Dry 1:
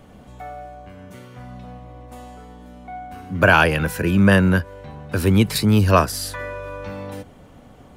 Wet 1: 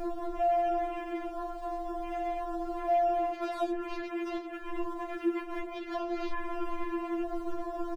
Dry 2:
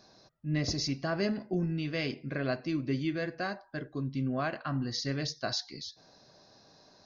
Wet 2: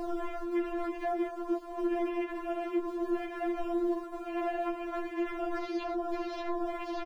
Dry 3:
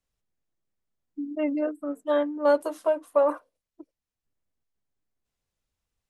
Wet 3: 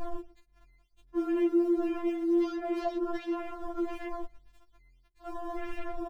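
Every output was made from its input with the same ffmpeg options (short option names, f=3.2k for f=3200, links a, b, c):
-filter_complex "[0:a]aeval=exprs='val(0)+0.5*0.126*sgn(val(0))':c=same,aeval=exprs='val(0)*sin(2*PI*42*n/s)':c=same,acrusher=samples=12:mix=1:aa=0.000001:lfo=1:lforange=19.2:lforate=1.7,acontrast=34,bandreject=f=60:t=h:w=6,bandreject=f=120:t=h:w=6,bandreject=f=180:t=h:w=6,bandreject=f=240:t=h:w=6,bandreject=f=300:t=h:w=6,bandreject=f=360:t=h:w=6,bandreject=f=420:t=h:w=6,asplit=2[a][b];[b]adelay=115,lowpass=f=1.3k:p=1,volume=-17dB,asplit=2[c][d];[d]adelay=115,lowpass=f=1.3k:p=1,volume=0.43,asplit=2[e][f];[f]adelay=115,lowpass=f=1.3k:p=1,volume=0.43,asplit=2[g][h];[h]adelay=115,lowpass=f=1.3k:p=1,volume=0.43[i];[c][e][g][i]amix=inputs=4:normalize=0[j];[a][j]amix=inputs=2:normalize=0,adynamicequalizer=threshold=0.0224:dfrequency=1200:dqfactor=2.1:tfrequency=1200:tqfactor=2.1:attack=5:release=100:ratio=0.375:range=2:mode=cutabove:tftype=bell,afwtdn=0.0447,highshelf=f=3.4k:g=-11,acrossover=split=700|3300[k][l][m];[k]acompressor=threshold=-25dB:ratio=4[n];[l]acompressor=threshold=-36dB:ratio=4[o];[m]acompressor=threshold=-51dB:ratio=4[p];[n][o][p]amix=inputs=3:normalize=0,afftfilt=real='re*4*eq(mod(b,16),0)':imag='im*4*eq(mod(b,16),0)':win_size=2048:overlap=0.75,volume=-4dB"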